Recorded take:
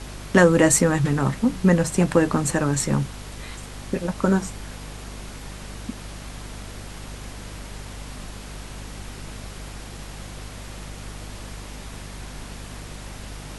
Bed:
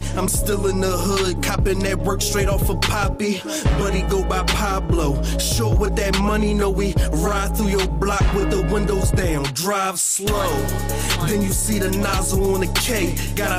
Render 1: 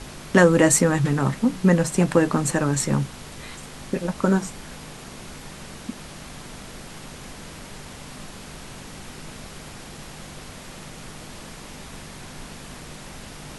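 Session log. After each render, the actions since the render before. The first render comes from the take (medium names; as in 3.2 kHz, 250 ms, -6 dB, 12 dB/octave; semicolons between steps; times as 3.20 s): hum notches 50/100 Hz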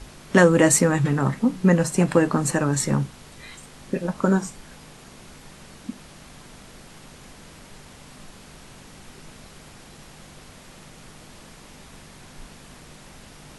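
noise print and reduce 6 dB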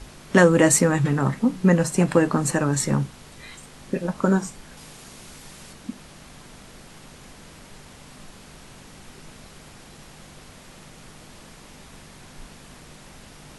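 4.77–5.73 s: treble shelf 3.5 kHz +6.5 dB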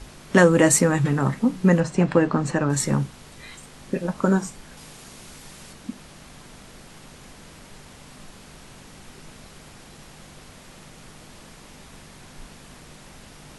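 1.80–2.70 s: distance through air 110 m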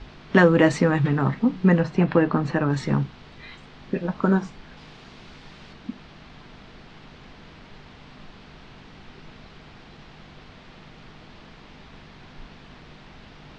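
low-pass 4.3 kHz 24 dB/octave; band-stop 550 Hz, Q 12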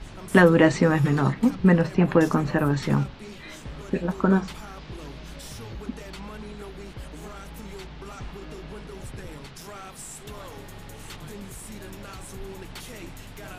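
add bed -21 dB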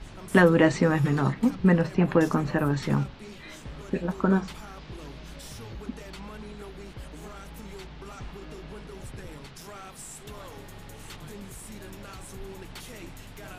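trim -2.5 dB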